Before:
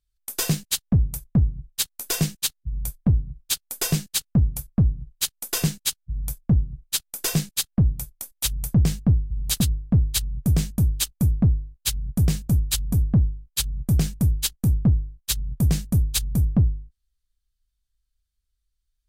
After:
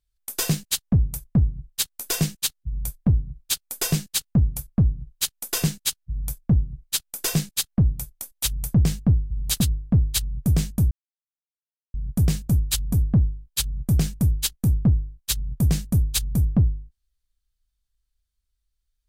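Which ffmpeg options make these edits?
-filter_complex "[0:a]asplit=3[a][b][c];[a]atrim=end=10.91,asetpts=PTS-STARTPTS,afade=t=out:st=10.906:d=0.004:c=hsin[d];[b]atrim=start=10.91:end=11.94,asetpts=PTS-STARTPTS,volume=0[e];[c]atrim=start=11.94,asetpts=PTS-STARTPTS,afade=t=in:d=0.004:c=hsin[f];[d][e][f]concat=n=3:v=0:a=1"

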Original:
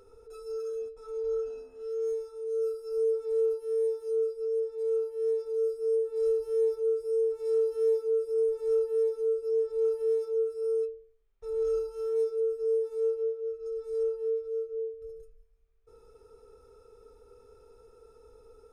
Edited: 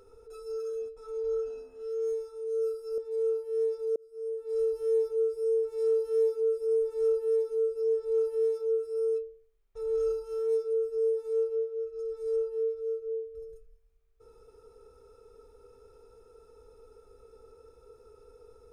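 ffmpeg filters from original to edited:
-filter_complex "[0:a]asplit=3[a][b][c];[a]atrim=end=2.982[d];[b]atrim=start=4.648:end=5.63,asetpts=PTS-STARTPTS,afade=t=out:st=0.978:d=0.004:c=hsin[e];[c]atrim=start=5.63,asetpts=PTS-STARTPTS,afade=t=in:d=0.79[f];[e][f]concat=n=2:v=0:a=1[g];[d][g]acrossfade=d=0.004:c1=hsin:c2=hsin"

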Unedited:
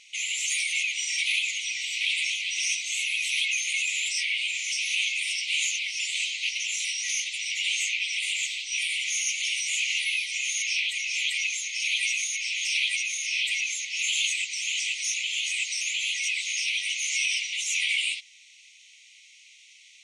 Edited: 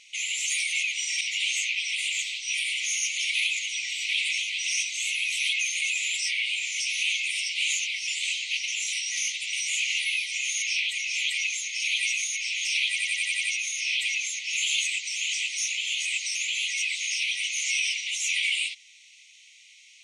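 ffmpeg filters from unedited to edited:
-filter_complex "[0:a]asplit=10[a][b][c][d][e][f][g][h][i][j];[a]atrim=end=1.212[k];[b]atrim=start=7.448:end=9.532[l];[c]atrim=start=1.208:end=7.452[m];[d]atrim=start=9.528:end=12.982[n];[e]atrim=start=12.888:end=12.982[o];[f]atrim=start=12.888:end=12.982[p];[g]atrim=start=12.888:end=12.982[q];[h]atrim=start=12.888:end=12.982[r];[i]atrim=start=12.888:end=12.982[s];[j]atrim=start=12.888[t];[k][l]acrossfade=d=0.004:c1=hsin:c2=hsin[u];[u][m]acrossfade=d=0.004:c1=hsin:c2=hsin[v];[v][n]acrossfade=d=0.004:c1=hsin:c2=hsin[w];[w][o]acrossfade=d=0.004:c1=hsin:c2=hsin[x];[x][p]acrossfade=d=0.004:c1=hsin:c2=hsin[y];[y][q]acrossfade=d=0.004:c1=hsin:c2=hsin[z];[z][r]acrossfade=d=0.004:c1=hsin:c2=hsin[aa];[aa][s]acrossfade=d=0.004:c1=hsin:c2=hsin[ab];[ab][t]acrossfade=d=0.004:c1=hsin:c2=hsin"

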